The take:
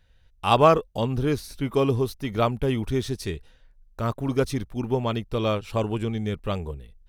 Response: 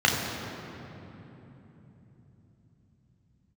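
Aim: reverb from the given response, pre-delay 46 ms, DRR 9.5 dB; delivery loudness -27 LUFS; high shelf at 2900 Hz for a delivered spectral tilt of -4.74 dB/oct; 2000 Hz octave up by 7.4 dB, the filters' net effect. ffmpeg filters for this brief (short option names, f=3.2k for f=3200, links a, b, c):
-filter_complex "[0:a]equalizer=f=2k:t=o:g=8.5,highshelf=f=2.9k:g=3.5,asplit=2[a][b];[1:a]atrim=start_sample=2205,adelay=46[c];[b][c]afir=irnorm=-1:irlink=0,volume=-27dB[d];[a][d]amix=inputs=2:normalize=0,volume=-3.5dB"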